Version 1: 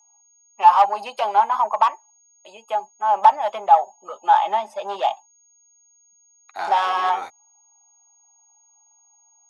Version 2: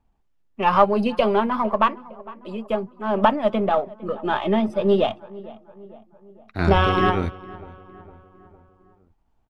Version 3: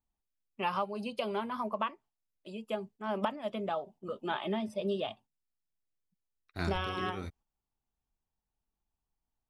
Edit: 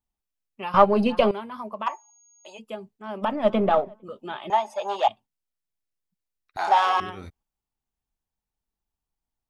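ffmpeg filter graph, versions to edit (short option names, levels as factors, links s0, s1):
-filter_complex "[1:a]asplit=2[s0][s1];[0:a]asplit=3[s2][s3][s4];[2:a]asplit=6[s5][s6][s7][s8][s9][s10];[s5]atrim=end=0.742[s11];[s0]atrim=start=0.738:end=1.312[s12];[s6]atrim=start=1.308:end=1.88[s13];[s2]atrim=start=1.86:end=2.6[s14];[s7]atrim=start=2.58:end=3.45[s15];[s1]atrim=start=3.21:end=4.04[s16];[s8]atrim=start=3.8:end=4.502[s17];[s3]atrim=start=4.498:end=5.082[s18];[s9]atrim=start=5.078:end=6.572[s19];[s4]atrim=start=6.568:end=7.002[s20];[s10]atrim=start=6.998[s21];[s11][s12]acrossfade=d=0.004:c1=hsin:c2=hsin[s22];[s22][s13]acrossfade=d=0.004:c1=hsin:c2=hsin[s23];[s23][s14]acrossfade=d=0.02:c1=tri:c2=tri[s24];[s24][s15]acrossfade=d=0.02:c1=tri:c2=tri[s25];[s25][s16]acrossfade=d=0.24:c1=tri:c2=tri[s26];[s26][s17]acrossfade=d=0.24:c1=tri:c2=tri[s27];[s27][s18]acrossfade=d=0.004:c1=hsin:c2=hsin[s28];[s28][s19]acrossfade=d=0.004:c1=hsin:c2=hsin[s29];[s29][s20]acrossfade=d=0.004:c1=hsin:c2=hsin[s30];[s30][s21]acrossfade=d=0.004:c1=hsin:c2=hsin"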